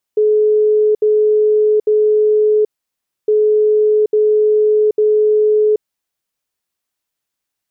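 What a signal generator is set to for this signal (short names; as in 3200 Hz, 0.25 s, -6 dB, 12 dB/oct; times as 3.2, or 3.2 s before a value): beep pattern sine 426 Hz, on 0.78 s, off 0.07 s, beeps 3, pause 0.63 s, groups 2, -9 dBFS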